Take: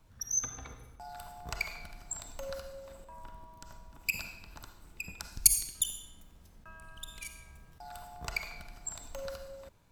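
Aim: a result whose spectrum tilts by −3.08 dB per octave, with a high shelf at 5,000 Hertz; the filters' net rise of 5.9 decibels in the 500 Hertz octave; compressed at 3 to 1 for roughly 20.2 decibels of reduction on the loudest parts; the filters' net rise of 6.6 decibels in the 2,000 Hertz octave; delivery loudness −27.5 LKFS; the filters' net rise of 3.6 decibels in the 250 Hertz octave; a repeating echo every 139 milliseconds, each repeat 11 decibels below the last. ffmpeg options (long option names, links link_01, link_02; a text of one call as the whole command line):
ffmpeg -i in.wav -af "equalizer=frequency=250:width_type=o:gain=3.5,equalizer=frequency=500:width_type=o:gain=5.5,equalizer=frequency=2000:width_type=o:gain=9,highshelf=frequency=5000:gain=-3,acompressor=threshold=-49dB:ratio=3,aecho=1:1:139|278|417:0.282|0.0789|0.0221,volume=22dB" out.wav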